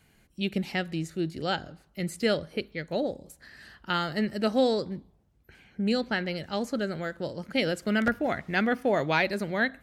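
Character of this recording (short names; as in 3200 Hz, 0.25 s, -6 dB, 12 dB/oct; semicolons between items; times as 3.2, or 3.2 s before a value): noise floor -64 dBFS; spectral tilt -3.5 dB/oct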